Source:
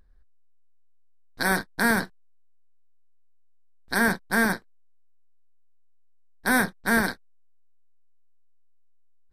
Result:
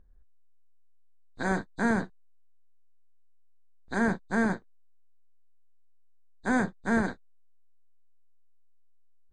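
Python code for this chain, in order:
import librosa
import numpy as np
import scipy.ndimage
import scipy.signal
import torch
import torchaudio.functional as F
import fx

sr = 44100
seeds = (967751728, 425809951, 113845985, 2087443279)

y = fx.freq_compress(x, sr, knee_hz=3400.0, ratio=1.5)
y = fx.tilt_shelf(y, sr, db=7.5, hz=1500.0)
y = y * librosa.db_to_amplitude(-8.0)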